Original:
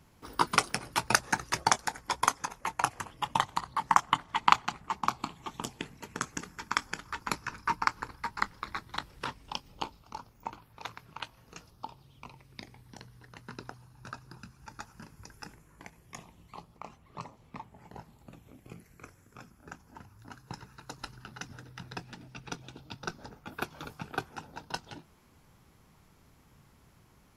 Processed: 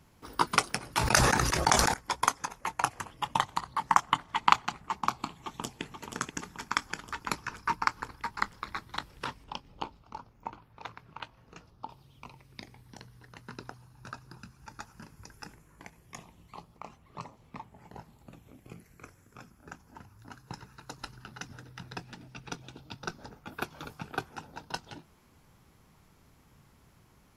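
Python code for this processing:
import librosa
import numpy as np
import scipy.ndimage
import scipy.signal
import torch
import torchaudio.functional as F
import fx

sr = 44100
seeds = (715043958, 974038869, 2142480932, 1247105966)

y = fx.sustainer(x, sr, db_per_s=27.0, at=(0.87, 1.94))
y = fx.echo_throw(y, sr, start_s=5.4, length_s=0.42, ms=480, feedback_pct=65, wet_db=-6.5)
y = fx.lowpass(y, sr, hz=2400.0, slope=6, at=(9.44, 11.9))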